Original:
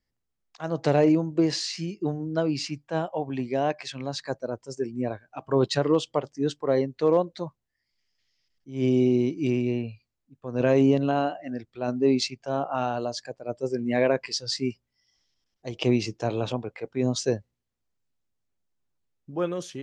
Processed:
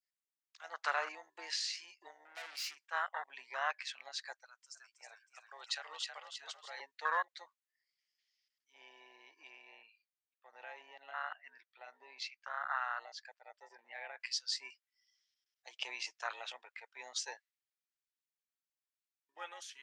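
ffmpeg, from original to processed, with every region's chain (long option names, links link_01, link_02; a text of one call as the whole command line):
ffmpeg -i in.wav -filter_complex "[0:a]asettb=1/sr,asplit=3[link_01][link_02][link_03];[link_01]atrim=end=2.254[link_04];[link_02]atrim=start=2.25:end=2.87,asetpts=PTS-STARTPTS,afade=type=in:duration=0.004:curve=qsin,afade=type=out:start_time=0.616:duration=0.004:curve=qsin,asplit=2[link_05][link_06];[link_06]adelay=34,volume=-10.5dB[link_07];[link_05][link_07]amix=inputs=2:normalize=0,atrim=end_sample=27342,acontrast=65,aeval=exprs='(tanh(31.6*val(0)+0.25)-tanh(0.25))/31.6':channel_layout=same[link_08];[link_03]atrim=start=2.866[link_09];[link_04][link_08]acrossfade=duration=0.004:curve1=hsin:curve2=qsin[link_10];[link_10][link_09]acrossfade=duration=0.004:curve1=qsin:curve2=hsin,asettb=1/sr,asplit=3[link_11][link_12][link_13];[link_11]atrim=end=4.354[link_14];[link_12]atrim=start=4.35:end=6.8,asetpts=PTS-STARTPTS,afade=type=in:duration=0.004:curve=qsin,afade=type=out:start_time=2.446:duration=0.004:curve=qsin,highpass=frequency=1400:poles=1,asplit=7[link_15][link_16][link_17][link_18][link_19][link_20][link_21];[link_16]adelay=318,afreqshift=52,volume=-6dB[link_22];[link_17]adelay=636,afreqshift=104,volume=-12.7dB[link_23];[link_18]adelay=954,afreqshift=156,volume=-19.5dB[link_24];[link_19]adelay=1272,afreqshift=208,volume=-26.2dB[link_25];[link_20]adelay=1590,afreqshift=260,volume=-33dB[link_26];[link_21]adelay=1908,afreqshift=312,volume=-39.7dB[link_27];[link_15][link_22][link_23][link_24][link_25][link_26][link_27]amix=inputs=7:normalize=0,atrim=end_sample=108045[link_28];[link_13]atrim=start=6.796[link_29];[link_14][link_28]acrossfade=duration=0.004:curve1=hsin:curve2=qsin[link_30];[link_30][link_29]acrossfade=duration=0.004:curve1=qsin:curve2=hsin,asettb=1/sr,asplit=3[link_31][link_32][link_33];[link_31]atrim=end=8.724[link_34];[link_32]atrim=start=8.72:end=14.2,asetpts=PTS-STARTPTS,afade=type=in:duration=0.004:curve=qsin,afade=type=out:start_time=5.476:duration=0.004:curve=qsin,highshelf=frequency=4900:gain=-11,acompressor=threshold=-28dB:ratio=3:attack=3.2:release=140:knee=1:detection=peak,highpass=140,lowpass=6300[link_35];[link_33]atrim=start=14.196[link_36];[link_34][link_35]acrossfade=duration=0.004:curve1=hsin:curve2=qsin[link_37];[link_37][link_36]acrossfade=duration=0.004:curve1=qsin:curve2=hsin,afwtdn=0.0398,adynamicequalizer=threshold=0.00794:dfrequency=1900:dqfactor=0.77:tfrequency=1900:tqfactor=0.77:attack=5:release=100:ratio=0.375:range=2:mode=boostabove:tftype=bell,highpass=frequency=1400:width=0.5412,highpass=frequency=1400:width=1.3066,volume=8.5dB" out.wav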